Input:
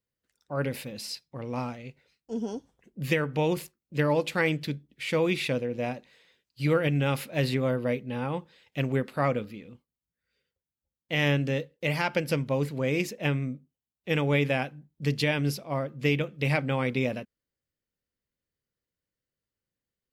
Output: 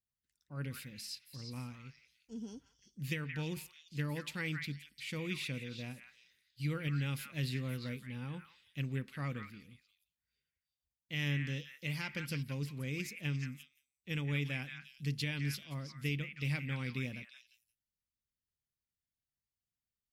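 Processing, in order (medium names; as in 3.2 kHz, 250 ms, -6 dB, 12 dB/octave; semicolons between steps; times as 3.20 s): amplifier tone stack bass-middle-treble 6-0-2; on a send: repeats whose band climbs or falls 174 ms, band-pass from 1.7 kHz, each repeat 1.4 oct, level -3 dB; on the sum: trim +7.5 dB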